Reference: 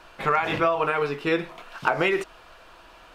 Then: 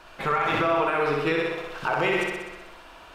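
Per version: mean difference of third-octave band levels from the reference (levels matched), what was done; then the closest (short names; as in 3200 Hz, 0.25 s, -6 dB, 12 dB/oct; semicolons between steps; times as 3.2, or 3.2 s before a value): 5.0 dB: on a send: flutter echo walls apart 10.8 m, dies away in 1.1 s; on the sum: limiter -14.5 dBFS, peak gain reduction 7.5 dB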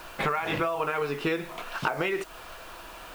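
7.5 dB: compressor 10:1, threshold -30 dBFS, peak gain reduction 14 dB; requantised 10-bit, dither triangular; gain +5.5 dB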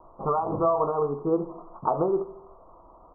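11.0 dB: steep low-pass 1200 Hz 96 dB/oct; feedback echo 77 ms, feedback 58%, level -17.5 dB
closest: first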